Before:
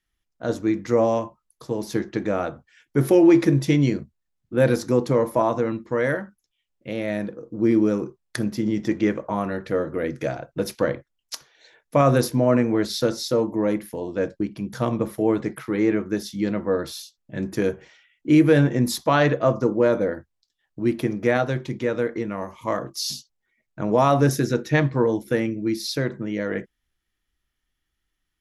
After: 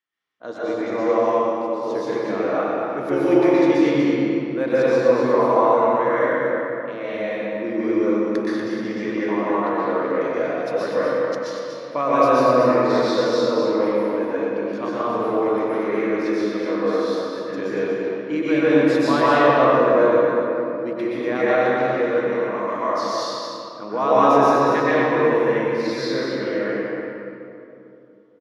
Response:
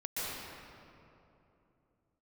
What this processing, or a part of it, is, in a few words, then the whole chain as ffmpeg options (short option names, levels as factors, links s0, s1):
station announcement: -filter_complex "[0:a]highpass=320,lowpass=4600,equalizer=f=1100:t=o:w=0.37:g=6.5,aecho=1:1:96.21|239.1:0.251|0.447[s0];[1:a]atrim=start_sample=2205[s1];[s0][s1]afir=irnorm=-1:irlink=0,volume=0.841"